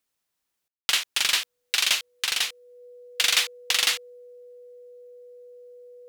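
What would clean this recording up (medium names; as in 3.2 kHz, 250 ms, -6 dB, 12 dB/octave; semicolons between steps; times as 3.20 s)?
band-stop 490 Hz, Q 30; room tone fill 0.68–0.89 s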